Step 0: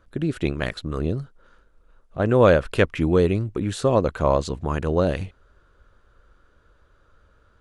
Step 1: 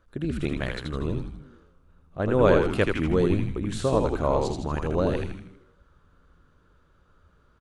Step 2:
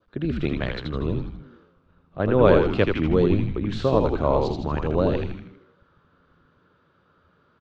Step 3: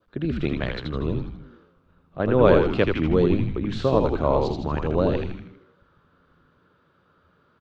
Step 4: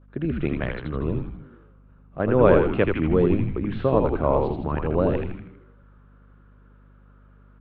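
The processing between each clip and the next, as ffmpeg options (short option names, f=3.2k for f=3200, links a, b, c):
-filter_complex "[0:a]asplit=8[a][b][c][d][e][f][g][h];[b]adelay=80,afreqshift=-94,volume=-3.5dB[i];[c]adelay=160,afreqshift=-188,volume=-9.5dB[j];[d]adelay=240,afreqshift=-282,volume=-15.5dB[k];[e]adelay=320,afreqshift=-376,volume=-21.6dB[l];[f]adelay=400,afreqshift=-470,volume=-27.6dB[m];[g]adelay=480,afreqshift=-564,volume=-33.6dB[n];[h]adelay=560,afreqshift=-658,volume=-39.6dB[o];[a][i][j][k][l][m][n][o]amix=inputs=8:normalize=0,volume=-5dB"
-filter_complex "[0:a]lowpass=f=4.7k:w=0.5412,lowpass=f=4.7k:w=1.3066,adynamicequalizer=threshold=0.00562:dfrequency=1700:dqfactor=1.5:tfrequency=1700:tqfactor=1.5:attack=5:release=100:ratio=0.375:range=2.5:mode=cutabove:tftype=bell,acrossover=split=100|1100[a][b][c];[a]aeval=exprs='sgn(val(0))*max(abs(val(0))-0.00168,0)':c=same[d];[d][b][c]amix=inputs=3:normalize=0,volume=3dB"
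-af "bandreject=f=50:t=h:w=6,bandreject=f=100:t=h:w=6"
-af "lowpass=f=2.7k:w=0.5412,lowpass=f=2.7k:w=1.3066,aeval=exprs='val(0)+0.00282*(sin(2*PI*50*n/s)+sin(2*PI*2*50*n/s)/2+sin(2*PI*3*50*n/s)/3+sin(2*PI*4*50*n/s)/4+sin(2*PI*5*50*n/s)/5)':c=same"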